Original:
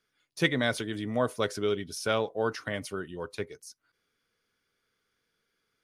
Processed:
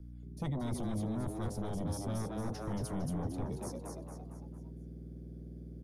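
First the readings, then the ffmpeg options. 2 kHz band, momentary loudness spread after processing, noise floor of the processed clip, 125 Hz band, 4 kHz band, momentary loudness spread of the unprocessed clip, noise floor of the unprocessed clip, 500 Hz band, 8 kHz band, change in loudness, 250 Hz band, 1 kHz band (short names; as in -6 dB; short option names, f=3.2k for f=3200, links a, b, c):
-22.0 dB, 12 LU, -48 dBFS, +2.0 dB, -17.5 dB, 12 LU, -79 dBFS, -12.0 dB, -5.5 dB, -8.5 dB, -2.5 dB, -8.5 dB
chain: -filter_complex "[0:a]firequalizer=gain_entry='entry(240,0);entry(360,-15);entry(560,-7);entry(1200,-19);entry(9800,-7)':delay=0.05:min_phase=1,areverse,acompressor=threshold=-43dB:ratio=8,areverse,aeval=exprs='val(0)+0.000447*(sin(2*PI*60*n/s)+sin(2*PI*2*60*n/s)/2+sin(2*PI*3*60*n/s)/3+sin(2*PI*4*60*n/s)/4+sin(2*PI*5*60*n/s)/5)':c=same,acrossover=split=680|3600[a][b][c];[a]aeval=exprs='0.015*sin(PI/2*2.82*val(0)/0.015)':c=same[d];[d][b][c]amix=inputs=3:normalize=0,asplit=6[e][f][g][h][i][j];[f]adelay=228,afreqshift=100,volume=-4dB[k];[g]adelay=456,afreqshift=200,volume=-11.3dB[l];[h]adelay=684,afreqshift=300,volume=-18.7dB[m];[i]adelay=912,afreqshift=400,volume=-26dB[n];[j]adelay=1140,afreqshift=500,volume=-33.3dB[o];[e][k][l][m][n][o]amix=inputs=6:normalize=0,acrossover=split=190|3000[p][q][r];[q]acompressor=threshold=-48dB:ratio=6[s];[p][s][r]amix=inputs=3:normalize=0,volume=7.5dB"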